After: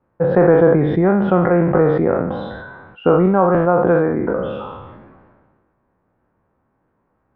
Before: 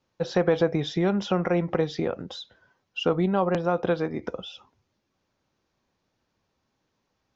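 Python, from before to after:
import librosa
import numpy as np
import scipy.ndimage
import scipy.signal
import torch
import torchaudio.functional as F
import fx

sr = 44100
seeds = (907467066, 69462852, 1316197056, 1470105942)

y = fx.spec_trails(x, sr, decay_s=0.63)
y = scipy.signal.sosfilt(scipy.signal.butter(4, 1600.0, 'lowpass', fs=sr, output='sos'), y)
y = fx.sustainer(y, sr, db_per_s=34.0)
y = y * librosa.db_to_amplitude(8.0)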